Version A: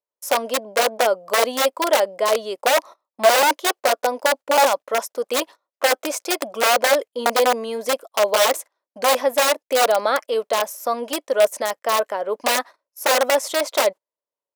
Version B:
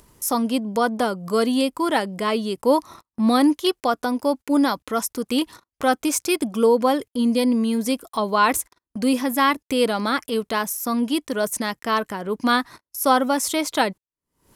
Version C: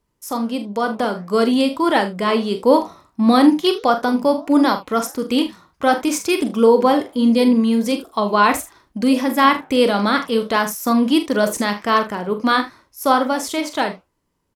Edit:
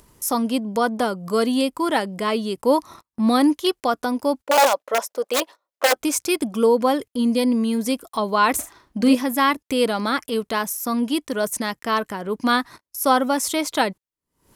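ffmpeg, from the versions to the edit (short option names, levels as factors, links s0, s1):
-filter_complex "[1:a]asplit=3[s0][s1][s2];[s0]atrim=end=4.472[s3];[0:a]atrim=start=4.468:end=5.962[s4];[s1]atrim=start=5.958:end=8.592[s5];[2:a]atrim=start=8.588:end=9.152[s6];[s2]atrim=start=9.148[s7];[s3][s4]acrossfade=d=0.004:c1=hsin:c2=hsin[s8];[s8][s5]acrossfade=d=0.004:c1=hsin:c2=hsin[s9];[s9][s6]acrossfade=d=0.004:c1=hsin:c2=hsin[s10];[s10][s7]acrossfade=d=0.004:c1=hsin:c2=hsin"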